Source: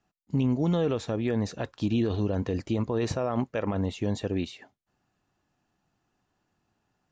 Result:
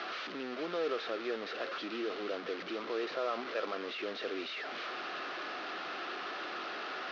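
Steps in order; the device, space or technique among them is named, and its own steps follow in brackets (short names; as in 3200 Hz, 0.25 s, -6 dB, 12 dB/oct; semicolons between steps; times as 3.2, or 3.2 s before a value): 2–2.83 de-hum 45.72 Hz, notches 5; digital answering machine (BPF 370–3300 Hz; delta modulation 32 kbps, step -30 dBFS; speaker cabinet 370–4500 Hz, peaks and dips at 370 Hz +4 dB, 900 Hz -9 dB, 1300 Hz +7 dB); gain -4 dB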